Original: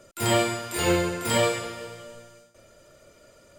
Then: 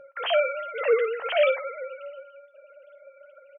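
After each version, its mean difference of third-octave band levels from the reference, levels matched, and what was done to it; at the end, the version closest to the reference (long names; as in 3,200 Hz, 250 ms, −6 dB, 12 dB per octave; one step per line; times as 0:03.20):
18.0 dB: three sine waves on the formant tracks
ambience of single reflections 13 ms −12 dB, 54 ms −17 dB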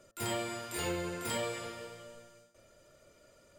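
3.5 dB: hum removal 113.1 Hz, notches 16
downward compressor 4 to 1, threshold −25 dBFS, peak gain reduction 7 dB
level −7.5 dB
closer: second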